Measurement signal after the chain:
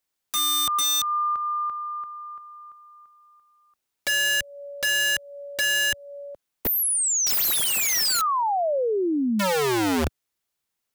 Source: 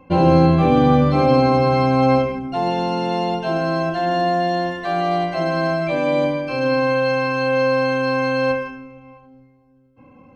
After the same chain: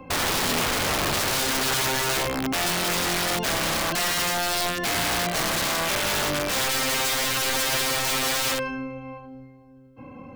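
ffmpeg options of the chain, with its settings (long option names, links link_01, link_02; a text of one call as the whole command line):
ffmpeg -i in.wav -filter_complex "[0:a]acrossover=split=97|2800[link_01][link_02][link_03];[link_01]acompressor=threshold=-36dB:ratio=4[link_04];[link_02]acompressor=threshold=-29dB:ratio=4[link_05];[link_03]acompressor=threshold=-29dB:ratio=4[link_06];[link_04][link_05][link_06]amix=inputs=3:normalize=0,aeval=exprs='(mod(17.8*val(0)+1,2)-1)/17.8':channel_layout=same,volume=5.5dB" out.wav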